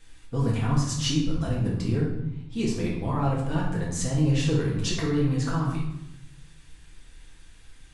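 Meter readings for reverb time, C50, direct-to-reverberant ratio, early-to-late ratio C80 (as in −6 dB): 0.85 s, 2.5 dB, −5.5 dB, 6.0 dB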